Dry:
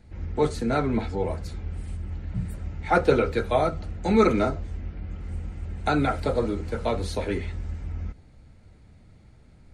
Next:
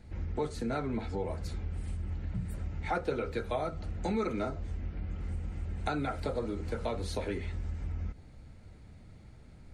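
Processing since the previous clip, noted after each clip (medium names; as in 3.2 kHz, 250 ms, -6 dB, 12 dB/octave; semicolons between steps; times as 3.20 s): compression 3:1, threshold -33 dBFS, peak gain reduction 14.5 dB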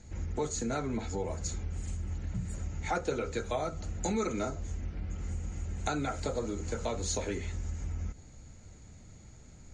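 resonant low-pass 6.8 kHz, resonance Q 14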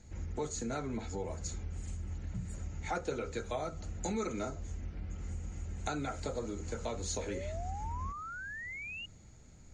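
painted sound rise, 7.19–9.06 s, 460–2900 Hz -39 dBFS; trim -4 dB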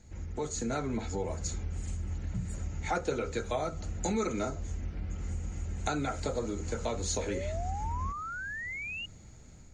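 level rider gain up to 4.5 dB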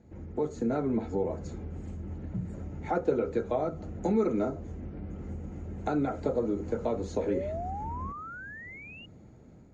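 band-pass filter 330 Hz, Q 0.75; trim +6.5 dB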